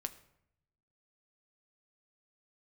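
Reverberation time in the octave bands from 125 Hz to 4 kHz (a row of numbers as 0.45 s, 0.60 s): 1.3 s, 0.95 s, 0.80 s, 0.70 s, 0.65 s, 0.50 s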